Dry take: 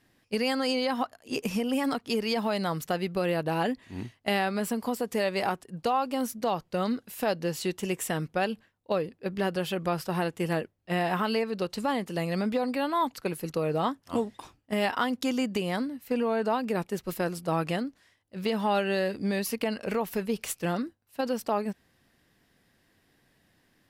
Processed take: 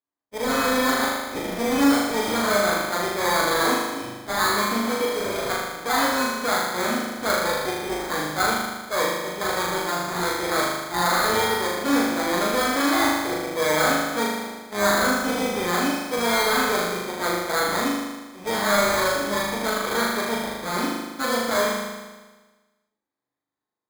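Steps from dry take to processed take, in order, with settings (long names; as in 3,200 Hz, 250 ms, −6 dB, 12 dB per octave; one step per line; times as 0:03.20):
lower of the sound and its delayed copy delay 0.49 ms
noise gate −56 dBFS, range −28 dB
transient designer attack −8 dB, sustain +2 dB
on a send at −3 dB: convolution reverb RT60 0.20 s, pre-delay 3 ms
on the sum: automatic gain control gain up to 4.5 dB
high-pass filter 400 Hz 12 dB per octave
in parallel at +0.5 dB: brickwall limiter −21 dBFS, peak gain reduction 8.5 dB
on the sum: dynamic equaliser 1,500 Hz, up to +6 dB, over −35 dBFS, Q 0.97
healed spectral selection 0:05.05–0:05.47, 570–2,100 Hz before
high-frequency loss of the air 360 metres
sample-rate reduction 2,800 Hz, jitter 0%
flutter between parallel walls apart 6.7 metres, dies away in 1.3 s
level −3 dB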